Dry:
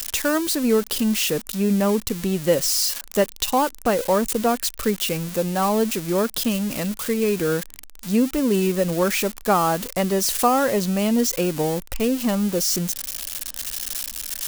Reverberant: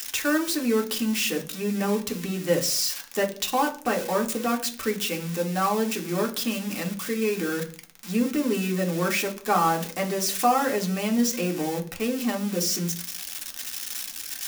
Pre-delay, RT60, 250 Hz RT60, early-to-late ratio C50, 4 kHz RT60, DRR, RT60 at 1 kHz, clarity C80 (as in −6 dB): 3 ms, 0.45 s, 0.65 s, 14.0 dB, 0.50 s, 1.5 dB, 0.40 s, 19.0 dB